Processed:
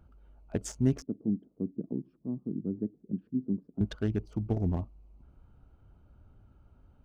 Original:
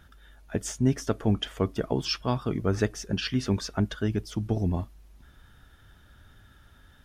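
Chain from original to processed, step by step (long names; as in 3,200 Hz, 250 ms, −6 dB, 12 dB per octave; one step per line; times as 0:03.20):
adaptive Wiener filter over 25 samples
0:01.02–0:03.81: flat-topped band-pass 230 Hz, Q 1.4
level −2.5 dB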